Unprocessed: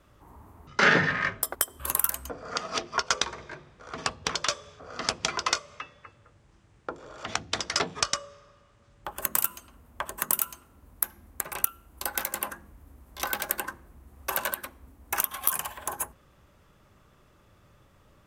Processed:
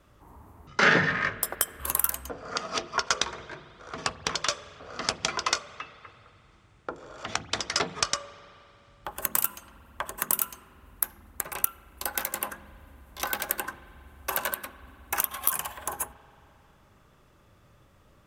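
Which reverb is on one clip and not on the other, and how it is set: spring tank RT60 3.1 s, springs 44 ms, chirp 40 ms, DRR 16 dB

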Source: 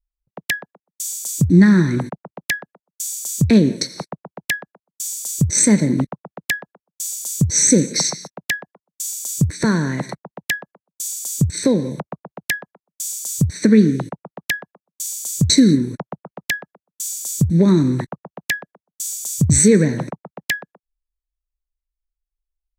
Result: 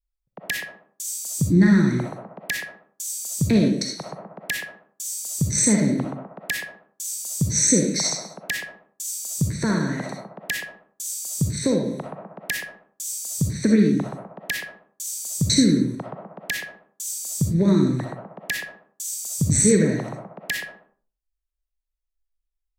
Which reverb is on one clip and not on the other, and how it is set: digital reverb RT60 0.42 s, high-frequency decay 0.7×, pre-delay 20 ms, DRR 0.5 dB; gain -6 dB

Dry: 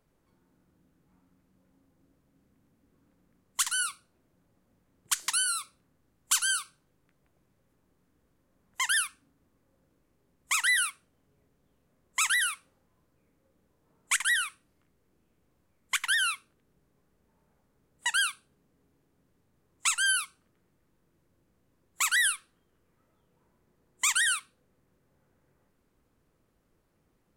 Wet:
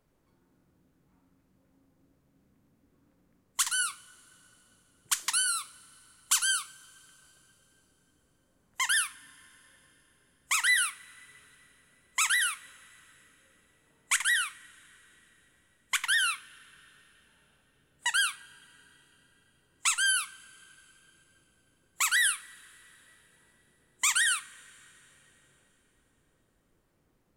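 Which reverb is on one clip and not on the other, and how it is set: two-slope reverb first 0.3 s, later 4 s, from -20 dB, DRR 13 dB

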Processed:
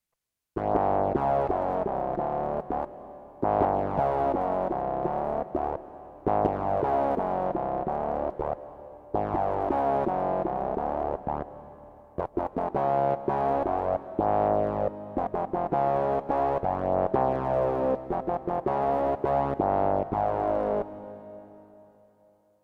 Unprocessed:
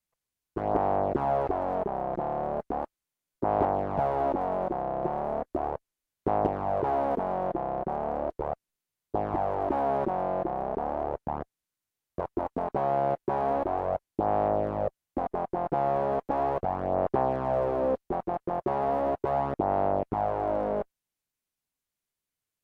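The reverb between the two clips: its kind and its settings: digital reverb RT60 3.5 s, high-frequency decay 0.9×, pre-delay 0.12 s, DRR 13 dB; gain +1.5 dB

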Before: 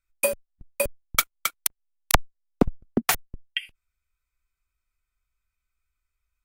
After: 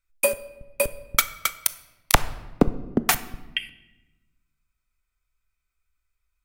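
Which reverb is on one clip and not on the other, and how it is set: shoebox room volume 560 m³, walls mixed, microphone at 0.32 m; gain +1.5 dB

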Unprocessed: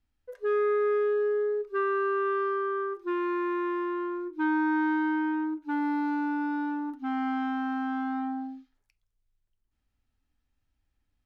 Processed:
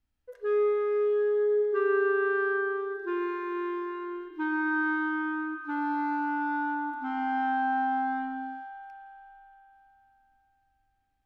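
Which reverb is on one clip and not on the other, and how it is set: spring tank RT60 3.9 s, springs 43 ms, chirp 55 ms, DRR 2 dB; gain -2.5 dB

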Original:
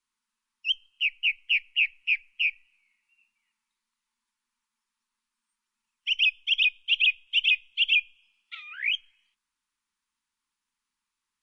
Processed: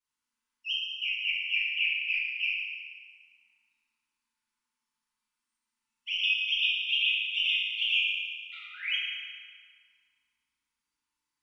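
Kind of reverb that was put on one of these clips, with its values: FDN reverb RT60 1.9 s, low-frequency decay 1.45×, high-frequency decay 0.8×, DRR -8.5 dB; gain -10.5 dB

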